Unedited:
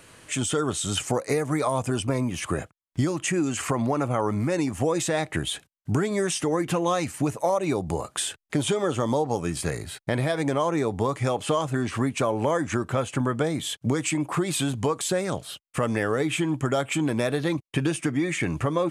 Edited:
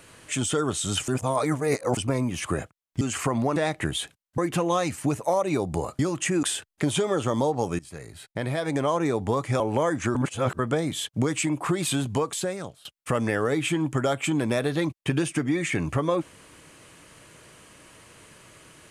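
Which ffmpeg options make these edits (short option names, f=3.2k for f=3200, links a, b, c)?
-filter_complex "[0:a]asplit=13[a][b][c][d][e][f][g][h][i][j][k][l][m];[a]atrim=end=1.082[n];[b]atrim=start=1.078:end=1.972,asetpts=PTS-STARTPTS,areverse[o];[c]atrim=start=1.968:end=3.012[p];[d]atrim=start=3.448:end=4.002[q];[e]atrim=start=5.078:end=5.902[r];[f]atrim=start=6.538:end=8.152[s];[g]atrim=start=3.008:end=3.452[t];[h]atrim=start=8.148:end=9.51,asetpts=PTS-STARTPTS,afade=t=out:st=1.358:d=0.004:c=hsin:silence=0.105925[u];[i]atrim=start=9.51:end=11.322,asetpts=PTS-STARTPTS,afade=t=in:d=1.09:silence=0.105925[v];[j]atrim=start=12.278:end=12.832[w];[k]atrim=start=12.828:end=13.272,asetpts=PTS-STARTPTS,areverse[x];[l]atrim=start=13.268:end=15.53,asetpts=PTS-STARTPTS,afade=t=out:st=1.362:d=0.9:c=qsin:silence=0.0891251[y];[m]atrim=start=15.53,asetpts=PTS-STARTPTS,afade=t=in:d=0.004:c=hsin:silence=0.0891251[z];[n][o]acrossfade=d=0.004:c1=hsin:c2=hsin[aa];[aa][p]acrossfade=d=0.004:c1=hsin:c2=hsin[ab];[ab][q]acrossfade=d=0.004:c1=hsin:c2=hsin[ac];[ac][r]acrossfade=d=0.004:c1=hsin:c2=hsin[ad];[ad][s]acrossfade=d=0.004:c1=hsin:c2=hsin[ae];[ae][t]acrossfade=d=0.004:c1=hsin:c2=hsin[af];[u][v]concat=n=2:v=0:a=1[ag];[af][ag]acrossfade=d=0.004:c1=hsin:c2=hsin[ah];[ah][w]acrossfade=d=0.004:c1=hsin:c2=hsin[ai];[ai][x]acrossfade=d=0.004:c1=hsin:c2=hsin[aj];[y][z]concat=n=2:v=0:a=1[ak];[aj][ak]acrossfade=d=0.004:c1=hsin:c2=hsin"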